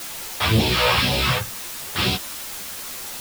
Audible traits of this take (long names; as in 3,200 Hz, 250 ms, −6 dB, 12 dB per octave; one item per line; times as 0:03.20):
phaser sweep stages 2, 2 Hz, lowest notch 270–1,300 Hz
a quantiser's noise floor 6 bits, dither triangular
a shimmering, thickened sound